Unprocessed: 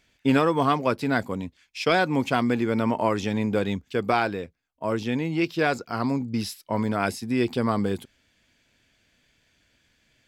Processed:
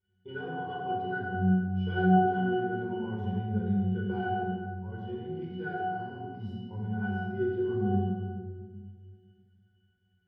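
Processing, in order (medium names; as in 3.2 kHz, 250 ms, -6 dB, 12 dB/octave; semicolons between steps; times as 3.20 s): pitch-class resonator F#, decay 0.66 s; simulated room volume 2200 m³, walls mixed, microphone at 4.7 m; trim +4 dB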